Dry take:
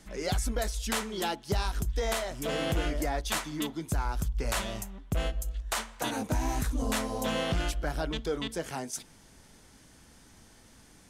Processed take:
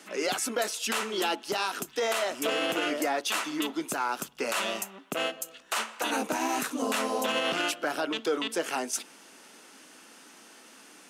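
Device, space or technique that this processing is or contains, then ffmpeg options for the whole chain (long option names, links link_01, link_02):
laptop speaker: -af "highpass=frequency=260:width=0.5412,highpass=frequency=260:width=1.3066,equalizer=frequency=1300:width_type=o:width=0.47:gain=5,equalizer=frequency=2700:width_type=o:width=0.27:gain=8,alimiter=limit=-24dB:level=0:latency=1:release=44,volume=5.5dB"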